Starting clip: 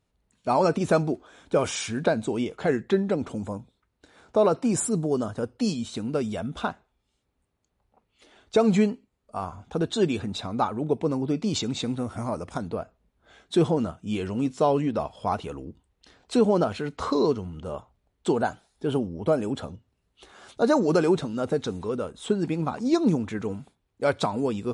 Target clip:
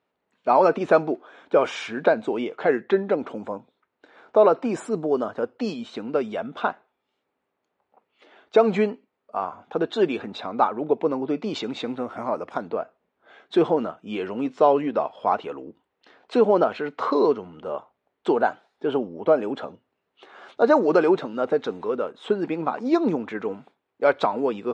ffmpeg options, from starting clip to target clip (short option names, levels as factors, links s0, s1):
-af "highpass=360,lowpass=2500,volume=1.88"